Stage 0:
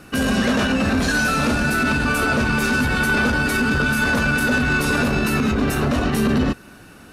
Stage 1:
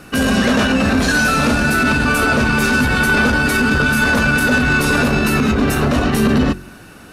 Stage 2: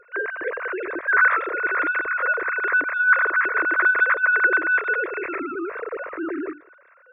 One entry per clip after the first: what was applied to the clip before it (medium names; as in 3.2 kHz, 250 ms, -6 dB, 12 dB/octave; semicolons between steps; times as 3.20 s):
de-hum 45.66 Hz, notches 8; trim +4.5 dB
formants replaced by sine waves; static phaser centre 810 Hz, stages 6; trim -6.5 dB